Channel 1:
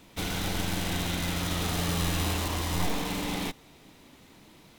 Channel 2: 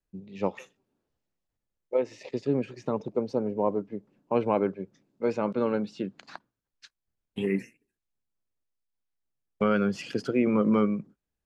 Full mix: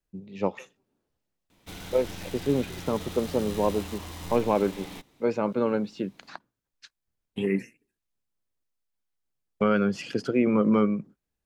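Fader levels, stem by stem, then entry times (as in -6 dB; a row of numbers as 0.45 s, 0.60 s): -9.5 dB, +1.5 dB; 1.50 s, 0.00 s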